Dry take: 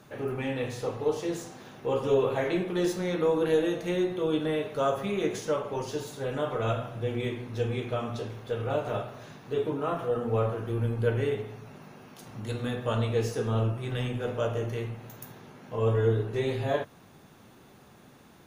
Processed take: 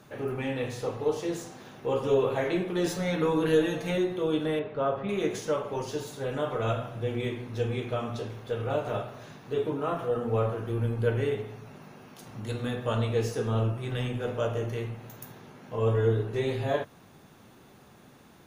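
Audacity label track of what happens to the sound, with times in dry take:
2.850000	3.980000	comb 7 ms, depth 91%
4.590000	5.090000	air absorption 360 m

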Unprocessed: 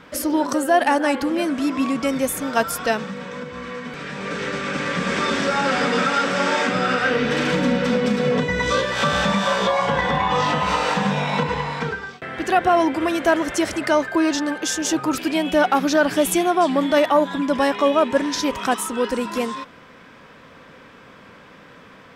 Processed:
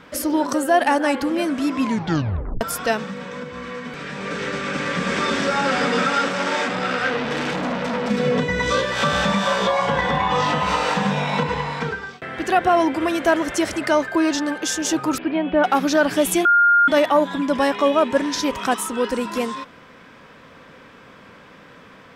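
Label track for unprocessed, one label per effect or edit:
1.800000	1.800000	tape stop 0.81 s
6.280000	8.100000	core saturation saturates under 1400 Hz
15.180000	15.640000	Gaussian blur sigma 3.3 samples
16.450000	16.880000	bleep 1410 Hz -11 dBFS

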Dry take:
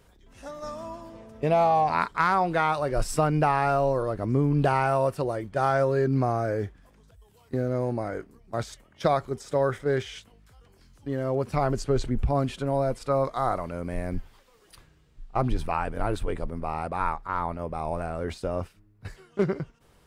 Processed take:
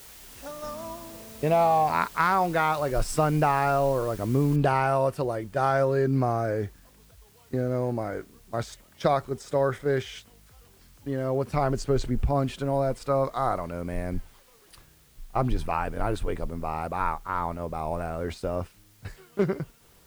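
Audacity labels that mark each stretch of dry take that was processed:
4.560000	4.560000	noise floor step -48 dB -61 dB

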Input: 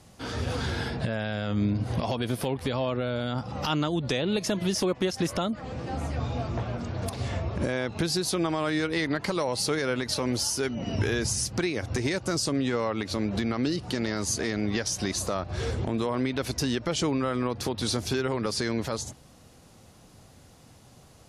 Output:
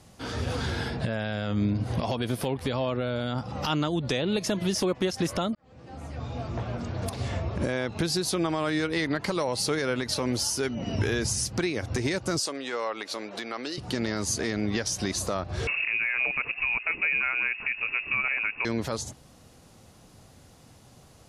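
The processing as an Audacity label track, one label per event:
5.550000	6.790000	fade in
12.390000	13.780000	HPF 510 Hz
15.670000	18.650000	inverted band carrier 2700 Hz

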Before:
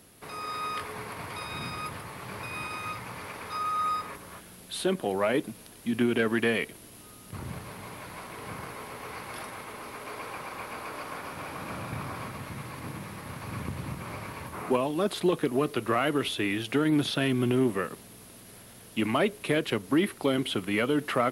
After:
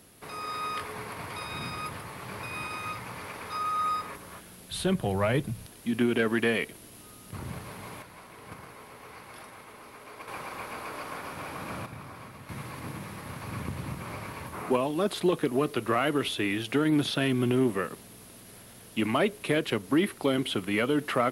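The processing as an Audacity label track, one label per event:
4.710000	5.660000	resonant low shelf 180 Hz +13 dB, Q 1.5
8.020000	10.280000	gate -38 dBFS, range -7 dB
11.860000	12.490000	gain -7.5 dB

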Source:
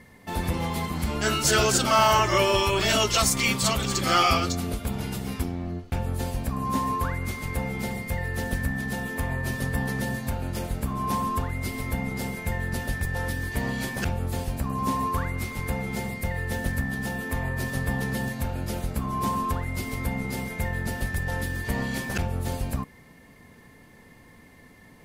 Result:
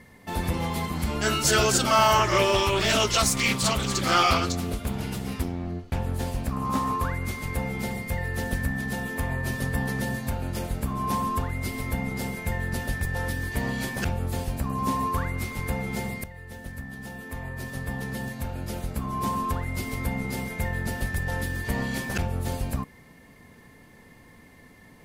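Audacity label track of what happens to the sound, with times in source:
2.170000	7.020000	Doppler distortion depth 0.25 ms
16.240000	19.770000	fade in, from -14.5 dB

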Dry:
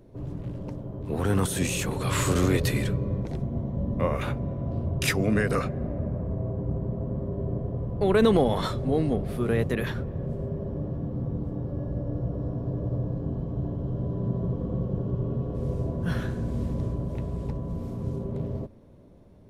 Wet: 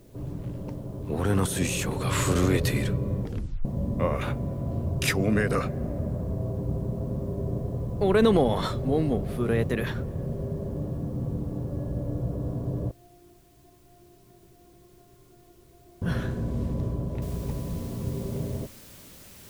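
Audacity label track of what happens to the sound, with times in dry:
3.220000	3.220000	tape stop 0.43 s
12.910000	16.020000	metallic resonator 350 Hz, decay 0.43 s, inharmonicity 0.002
17.220000	17.220000	noise floor step -65 dB -50 dB

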